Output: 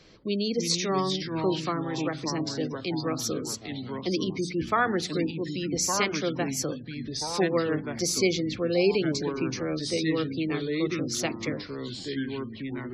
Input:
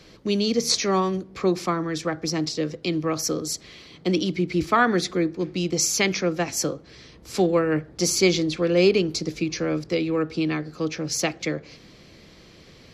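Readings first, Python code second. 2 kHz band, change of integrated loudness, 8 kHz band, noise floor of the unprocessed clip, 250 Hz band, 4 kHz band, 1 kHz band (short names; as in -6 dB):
-4.0 dB, -4.5 dB, -4.5 dB, -50 dBFS, -3.5 dB, -3.5 dB, -3.5 dB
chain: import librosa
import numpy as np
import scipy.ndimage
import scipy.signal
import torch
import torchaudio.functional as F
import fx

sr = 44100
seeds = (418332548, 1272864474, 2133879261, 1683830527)

y = fx.hum_notches(x, sr, base_hz=60, count=5)
y = fx.echo_pitch(y, sr, ms=269, semitones=-3, count=3, db_per_echo=-6.0)
y = fx.spec_gate(y, sr, threshold_db=-30, keep='strong')
y = y * librosa.db_to_amplitude(-5.0)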